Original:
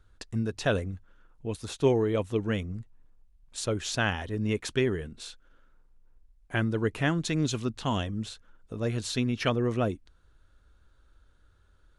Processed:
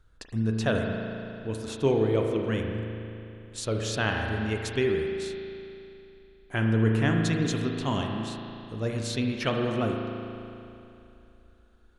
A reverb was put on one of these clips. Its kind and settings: spring tank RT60 2.9 s, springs 36 ms, chirp 50 ms, DRR 1.5 dB; gain -1 dB

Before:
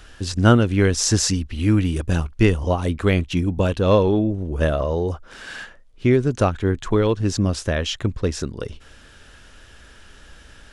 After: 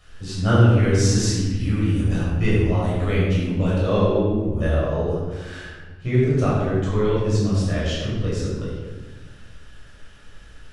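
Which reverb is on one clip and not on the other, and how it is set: shoebox room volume 1000 m³, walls mixed, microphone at 6.2 m; gain -14 dB

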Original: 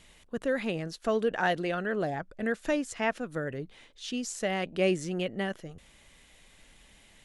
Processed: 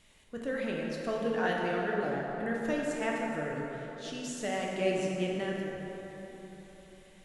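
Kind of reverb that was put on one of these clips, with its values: plate-style reverb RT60 4 s, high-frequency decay 0.5×, DRR -2.5 dB; gain -6.5 dB

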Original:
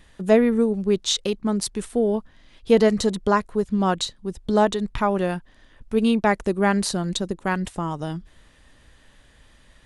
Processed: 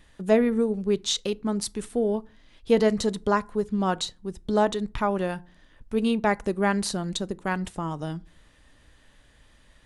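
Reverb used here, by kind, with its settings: FDN reverb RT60 0.38 s, low-frequency decay 1.45×, high-frequency decay 0.6×, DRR 18 dB; gain -3.5 dB

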